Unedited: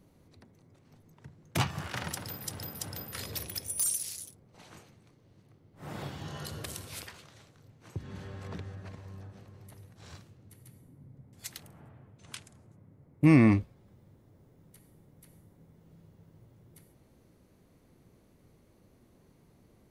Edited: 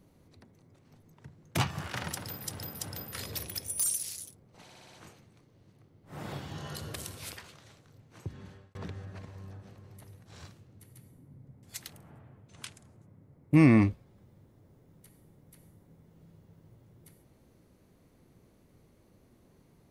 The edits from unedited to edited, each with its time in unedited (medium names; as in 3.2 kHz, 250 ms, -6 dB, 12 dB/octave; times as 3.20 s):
4.63 s: stutter 0.06 s, 6 plays
7.91–8.45 s: fade out